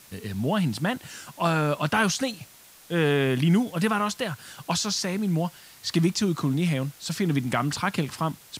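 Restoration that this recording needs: noise reduction 20 dB, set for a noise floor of -51 dBFS

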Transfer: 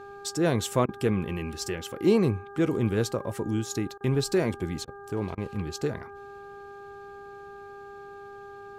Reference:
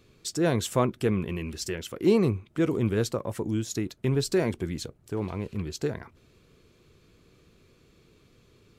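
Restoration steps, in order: de-hum 401.4 Hz, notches 4; interpolate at 0.86/3.98/4.85/5.35 s, 25 ms

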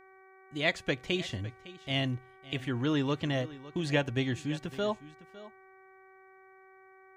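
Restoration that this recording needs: de-hum 380.6 Hz, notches 6; inverse comb 557 ms -17.5 dB

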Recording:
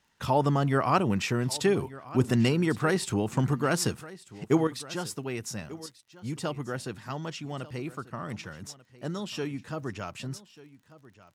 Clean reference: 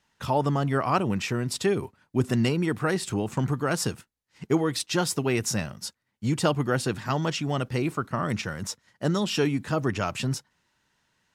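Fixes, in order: de-click; inverse comb 1190 ms -18.5 dB; trim 0 dB, from 4.67 s +9 dB

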